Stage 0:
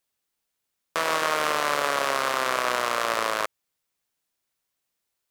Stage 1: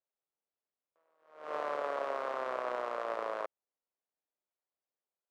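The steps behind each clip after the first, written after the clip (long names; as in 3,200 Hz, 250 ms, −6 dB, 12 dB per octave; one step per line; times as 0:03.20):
resonant band-pass 570 Hz, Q 1.2
level that may rise only so fast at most 110 dB per second
level −6 dB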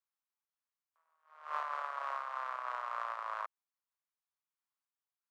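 four-pole ladder high-pass 900 Hz, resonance 45%
amplitude modulation by smooth noise, depth 60%
level +8.5 dB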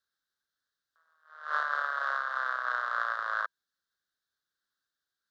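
drawn EQ curve 500 Hz 0 dB, 970 Hz −9 dB, 1,600 Hz +12 dB, 2,400 Hz −16 dB, 3,700 Hz +8 dB, 8,600 Hz −7 dB
level +6.5 dB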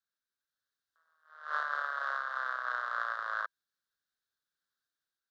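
automatic gain control gain up to 4.5 dB
level −8 dB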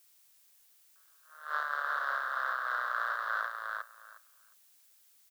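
on a send: repeating echo 359 ms, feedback 16%, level −3 dB
on the sum: background noise blue −64 dBFS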